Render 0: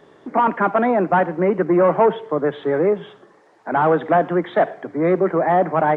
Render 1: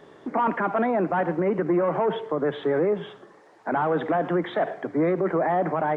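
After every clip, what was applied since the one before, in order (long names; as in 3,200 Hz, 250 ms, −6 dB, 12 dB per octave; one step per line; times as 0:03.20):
brickwall limiter −15.5 dBFS, peak gain reduction 10 dB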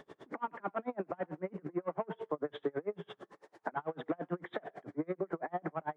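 downward compressor 6 to 1, threshold −30 dBFS, peak gain reduction 11 dB
tremolo with a sine in dB 9 Hz, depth 35 dB
level +1 dB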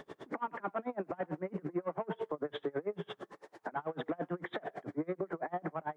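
brickwall limiter −30.5 dBFS, peak gain reduction 10.5 dB
level +4.5 dB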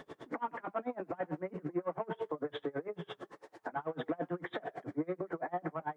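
notch comb filter 200 Hz
level +1 dB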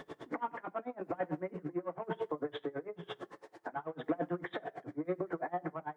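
shaped tremolo saw down 0.99 Hz, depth 55%
convolution reverb RT60 0.45 s, pre-delay 3 ms, DRR 17.5 dB
level +2 dB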